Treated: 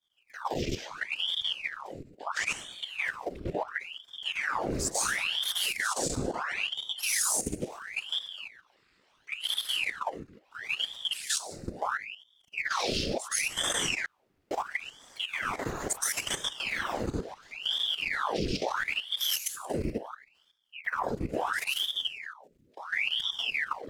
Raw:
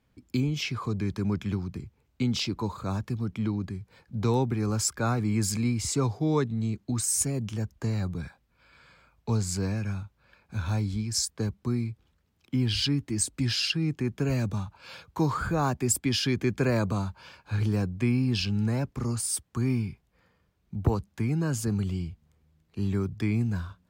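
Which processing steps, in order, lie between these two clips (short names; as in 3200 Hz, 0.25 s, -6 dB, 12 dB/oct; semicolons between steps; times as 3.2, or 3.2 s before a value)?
15.34–16.72 tone controls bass -7 dB, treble -1 dB; plate-style reverb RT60 0.7 s, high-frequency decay 0.85×, pre-delay 0.11 s, DRR -5 dB; whisperiser; 6.52–7.22 comb 2.9 ms, depth 87%; level quantiser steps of 12 dB; bell 640 Hz -15 dB 2.2 oct; 14.06–14.51 room tone; ring modulator with a swept carrier 1800 Hz, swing 90%, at 0.73 Hz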